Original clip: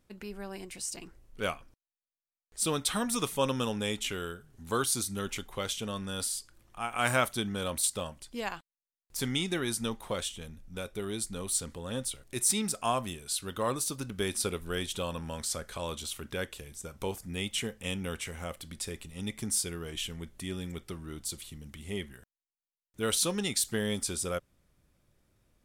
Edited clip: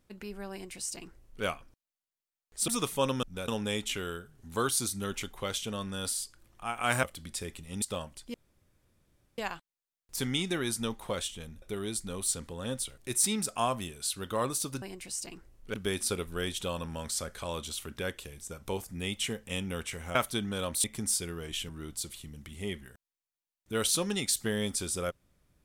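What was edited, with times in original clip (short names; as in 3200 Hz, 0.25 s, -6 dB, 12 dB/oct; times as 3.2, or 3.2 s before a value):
0.52–1.44 copy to 14.08
2.68–3.08 cut
7.18–7.87 swap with 18.49–19.28
8.39 insert room tone 1.04 s
10.63–10.88 move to 3.63
20.13–20.97 cut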